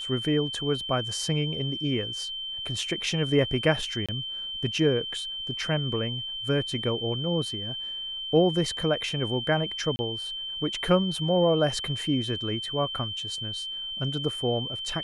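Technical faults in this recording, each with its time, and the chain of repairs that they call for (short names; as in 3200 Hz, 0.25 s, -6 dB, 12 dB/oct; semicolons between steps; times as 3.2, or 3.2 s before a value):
tone 3100 Hz -32 dBFS
4.06–4.09 gap 26 ms
9.96–9.99 gap 30 ms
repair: notch 3100 Hz, Q 30; interpolate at 4.06, 26 ms; interpolate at 9.96, 30 ms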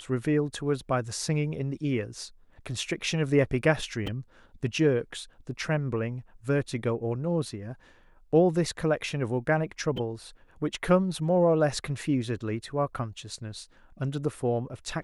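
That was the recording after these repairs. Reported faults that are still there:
none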